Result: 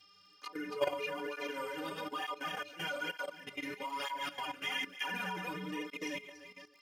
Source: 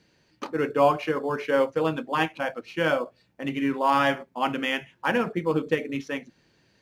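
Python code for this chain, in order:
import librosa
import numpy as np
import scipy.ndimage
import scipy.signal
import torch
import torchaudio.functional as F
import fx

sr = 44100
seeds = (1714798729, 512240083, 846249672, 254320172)

y = fx.reverse_delay_fb(x, sr, ms=148, feedback_pct=52, wet_db=-1)
y = fx.dmg_buzz(y, sr, base_hz=400.0, harmonics=14, level_db=-58.0, tilt_db=-1, odd_only=False)
y = fx.stiff_resonator(y, sr, f0_hz=88.0, decay_s=0.58, stiffness=0.03)
y = fx.level_steps(y, sr, step_db=14)
y = fx.high_shelf(y, sr, hz=2000.0, db=11.5)
y = fx.dmg_crackle(y, sr, seeds[0], per_s=50.0, level_db=-54.0)
y = fx.flanger_cancel(y, sr, hz=1.1, depth_ms=5.0)
y = y * librosa.db_to_amplitude(3.5)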